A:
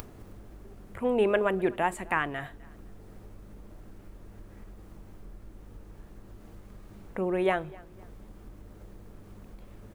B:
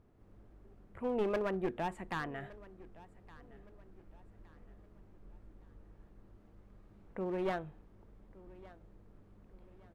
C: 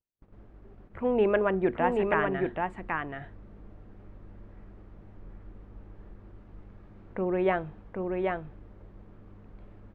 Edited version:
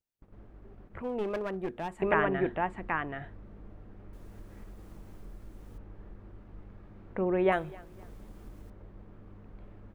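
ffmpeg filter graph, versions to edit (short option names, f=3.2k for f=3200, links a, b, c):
-filter_complex "[0:a]asplit=2[a][b];[2:a]asplit=4[c][d][e][f];[c]atrim=end=1.022[g];[1:a]atrim=start=1.018:end=2.022[h];[d]atrim=start=2.018:end=4.132[i];[a]atrim=start=4.128:end=5.782[j];[e]atrim=start=5.778:end=7.522[k];[b]atrim=start=7.518:end=8.702[l];[f]atrim=start=8.698[m];[g][h]acrossfade=d=0.004:c1=hsin:c2=hsin[n];[n][i]acrossfade=d=0.004:c1=hsin:c2=hsin[o];[o][j]acrossfade=d=0.004:c1=hsin:c2=hsin[p];[p][k]acrossfade=d=0.004:c1=hsin:c2=hsin[q];[q][l]acrossfade=d=0.004:c1=hsin:c2=hsin[r];[r][m]acrossfade=d=0.004:c1=hsin:c2=hsin"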